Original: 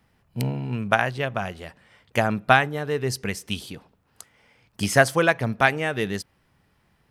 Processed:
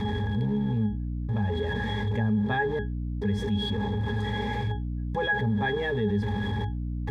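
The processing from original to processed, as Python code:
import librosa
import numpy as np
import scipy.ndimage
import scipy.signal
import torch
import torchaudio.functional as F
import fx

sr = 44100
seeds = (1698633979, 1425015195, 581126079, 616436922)

y = x + 0.5 * 10.0 ** (-23.5 / 20.0) * np.sign(x)
y = fx.step_gate(y, sr, bpm=70, pattern='xxxx..xxx', floor_db=-60.0, edge_ms=4.5)
y = fx.octave_resonator(y, sr, note='G#', decay_s=0.16)
y = fx.add_hum(y, sr, base_hz=60, snr_db=16)
y = fx.env_flatten(y, sr, amount_pct=70)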